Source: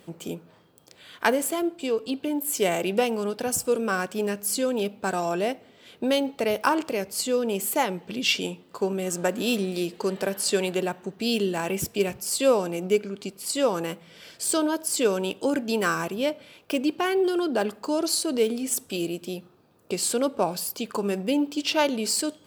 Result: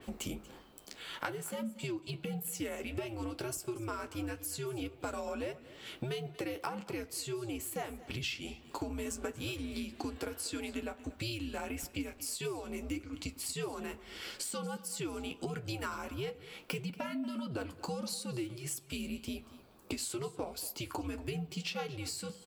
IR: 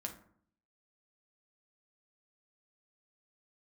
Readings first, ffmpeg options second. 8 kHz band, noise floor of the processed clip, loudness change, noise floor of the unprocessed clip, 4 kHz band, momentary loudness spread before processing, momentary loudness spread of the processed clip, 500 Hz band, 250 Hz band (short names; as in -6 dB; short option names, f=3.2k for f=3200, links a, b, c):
-12.5 dB, -57 dBFS, -13.5 dB, -56 dBFS, -12.0 dB, 7 LU, 5 LU, -16.0 dB, -12.5 dB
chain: -filter_complex "[0:a]highpass=f=370:p=1,flanger=delay=7.1:depth=6.4:regen=-44:speed=1.6:shape=triangular,acompressor=threshold=-43dB:ratio=8,aecho=1:1:234:0.126,asplit=2[a][b];[1:a]atrim=start_sample=2205[c];[b][c]afir=irnorm=-1:irlink=0,volume=-13dB[d];[a][d]amix=inputs=2:normalize=0,afreqshift=-120,adynamicequalizer=threshold=0.00112:dfrequency=3800:dqfactor=0.7:tfrequency=3800:tqfactor=0.7:attack=5:release=100:ratio=0.375:range=2.5:mode=cutabove:tftype=highshelf,volume=6dB"